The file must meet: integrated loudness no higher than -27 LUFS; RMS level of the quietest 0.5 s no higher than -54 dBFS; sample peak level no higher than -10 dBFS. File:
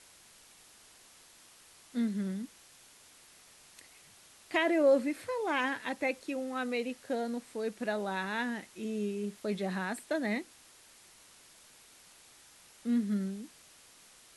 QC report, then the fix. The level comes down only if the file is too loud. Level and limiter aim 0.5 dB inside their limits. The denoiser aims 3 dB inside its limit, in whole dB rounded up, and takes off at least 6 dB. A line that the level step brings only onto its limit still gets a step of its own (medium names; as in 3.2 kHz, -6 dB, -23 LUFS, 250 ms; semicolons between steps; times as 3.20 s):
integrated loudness -33.5 LUFS: pass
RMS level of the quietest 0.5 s -58 dBFS: pass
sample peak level -16.0 dBFS: pass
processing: none needed